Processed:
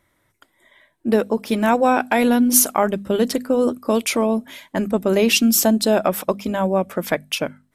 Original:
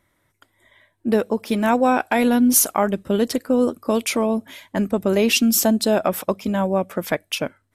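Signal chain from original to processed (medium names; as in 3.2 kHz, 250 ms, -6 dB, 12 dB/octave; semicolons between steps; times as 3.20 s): hum notches 50/100/150/200/250 Hz; trim +1.5 dB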